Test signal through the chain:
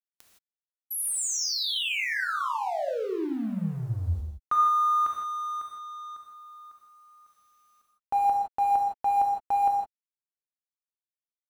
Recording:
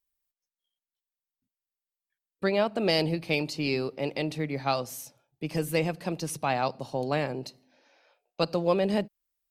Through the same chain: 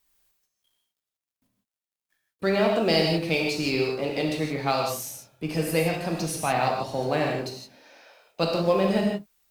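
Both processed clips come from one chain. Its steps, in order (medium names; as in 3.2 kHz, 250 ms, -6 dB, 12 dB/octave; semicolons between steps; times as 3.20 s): companding laws mixed up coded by mu; gated-style reverb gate 190 ms flat, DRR -0.5 dB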